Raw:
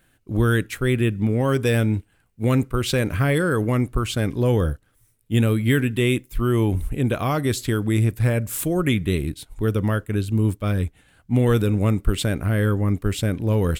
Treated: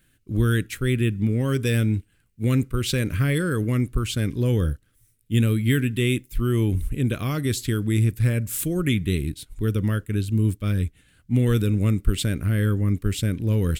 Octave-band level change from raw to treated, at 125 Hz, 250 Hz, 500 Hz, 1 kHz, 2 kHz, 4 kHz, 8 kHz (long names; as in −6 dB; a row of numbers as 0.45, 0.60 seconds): −0.5, −2.0, −5.5, −8.0, −3.5, −1.0, 0.0 decibels